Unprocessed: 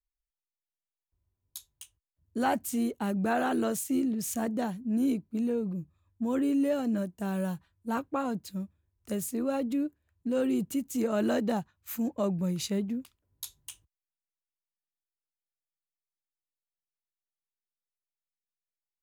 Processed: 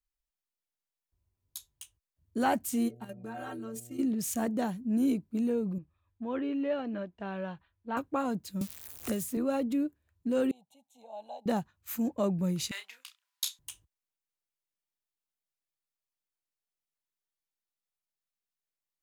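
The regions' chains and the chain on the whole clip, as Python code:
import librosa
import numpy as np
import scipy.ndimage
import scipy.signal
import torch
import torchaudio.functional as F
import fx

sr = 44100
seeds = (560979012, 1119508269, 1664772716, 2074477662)

y = fx.stiff_resonator(x, sr, f0_hz=67.0, decay_s=0.28, stiffness=0.03, at=(2.88, 3.98), fade=0.02)
y = fx.level_steps(y, sr, step_db=10, at=(2.88, 3.98), fade=0.02)
y = fx.dmg_buzz(y, sr, base_hz=120.0, harmonics=6, level_db=-54.0, tilt_db=-7, odd_only=False, at=(2.88, 3.98), fade=0.02)
y = fx.chain(y, sr, fx.lowpass(hz=3500.0, slope=24),
    fx.peak_eq(hz=160.0, db=-9.0, octaves=2.2), at=(5.78, 7.97))
y = fx.chain(y, sr, fx.crossing_spikes(level_db=-38.5),
    fx.band_squash(depth_pct=100), at=(8.61, 9.37))
y = fx.chain(y, sr, fx.double_bandpass(hz=1800.0, octaves=2.3),
    fx.fixed_phaser(hz=1300.0, stages=6), at=(10.51, 11.46))
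y = fx.chain(y, sr, fx.highpass(hz=960.0, slope=24),
    fx.peak_eq(hz=3600.0, db=11.0, octaves=2.7),
    fx.doubler(ms=31.0, db=-8.0), at=(12.71, 13.59))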